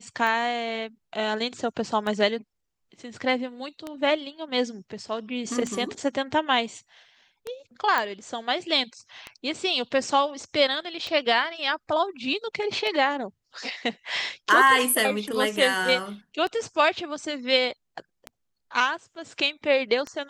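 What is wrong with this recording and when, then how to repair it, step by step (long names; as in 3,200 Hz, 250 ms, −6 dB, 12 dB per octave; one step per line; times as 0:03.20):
scratch tick 33 1/3 rpm −18 dBFS
0:07.98: click −11 dBFS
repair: click removal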